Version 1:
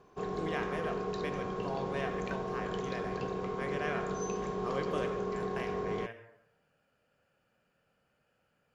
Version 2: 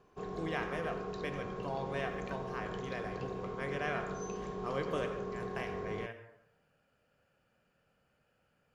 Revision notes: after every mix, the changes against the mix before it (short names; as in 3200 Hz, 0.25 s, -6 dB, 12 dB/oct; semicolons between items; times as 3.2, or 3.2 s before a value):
background -5.5 dB; master: add low shelf 110 Hz +5 dB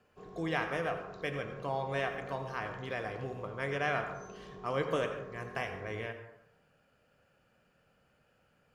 speech +4.5 dB; background -9.0 dB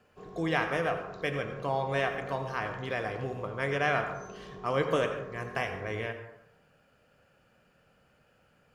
speech +4.5 dB; background +3.0 dB